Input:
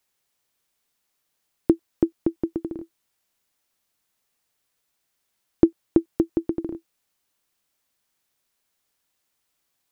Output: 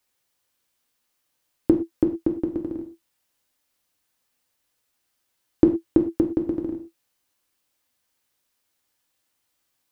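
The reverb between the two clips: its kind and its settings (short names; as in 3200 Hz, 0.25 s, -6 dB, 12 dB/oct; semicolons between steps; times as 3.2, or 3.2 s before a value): non-linear reverb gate 0.14 s falling, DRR 2.5 dB; gain -1 dB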